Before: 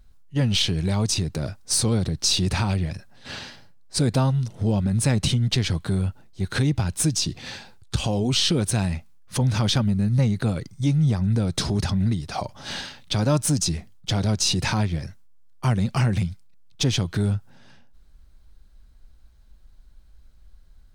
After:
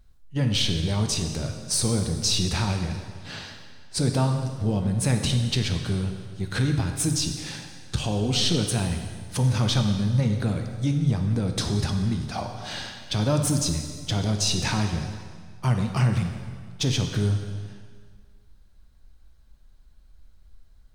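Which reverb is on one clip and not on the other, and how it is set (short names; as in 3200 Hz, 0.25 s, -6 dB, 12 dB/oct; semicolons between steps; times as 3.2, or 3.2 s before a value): plate-style reverb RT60 1.8 s, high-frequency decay 0.9×, DRR 4 dB; gain -3 dB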